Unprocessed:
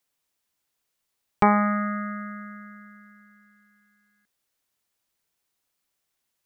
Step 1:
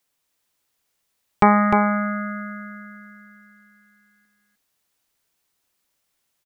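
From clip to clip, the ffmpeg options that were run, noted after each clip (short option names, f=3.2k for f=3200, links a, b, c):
-af "aecho=1:1:303:0.596,volume=4dB"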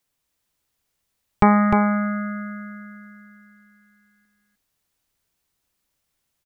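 -af "lowshelf=f=160:g=11.5,volume=-2.5dB"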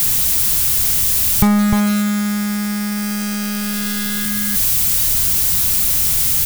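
-af "aeval=exprs='val(0)+0.5*0.168*sgn(val(0))':c=same,bass=f=250:g=15,treble=f=4k:g=-2,crystalizer=i=5:c=0,volume=-9.5dB"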